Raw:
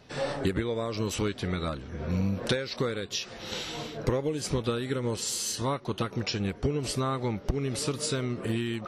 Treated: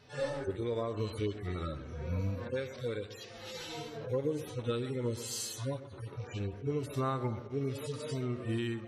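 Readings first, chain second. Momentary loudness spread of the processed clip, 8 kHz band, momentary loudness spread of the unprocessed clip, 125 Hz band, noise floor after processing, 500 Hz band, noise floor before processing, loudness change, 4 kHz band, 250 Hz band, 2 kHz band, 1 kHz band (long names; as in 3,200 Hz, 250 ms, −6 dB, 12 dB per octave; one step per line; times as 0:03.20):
7 LU, −10.0 dB, 4 LU, −4.5 dB, −49 dBFS, −4.5 dB, −46 dBFS, −6.0 dB, −11.0 dB, −7.0 dB, −8.5 dB, −6.5 dB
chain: harmonic-percussive split with one part muted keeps harmonic
parametric band 190 Hz −12 dB 0.29 octaves
delay with a low-pass on its return 127 ms, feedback 48%, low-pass 2,300 Hz, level −13.5 dB
level −2.5 dB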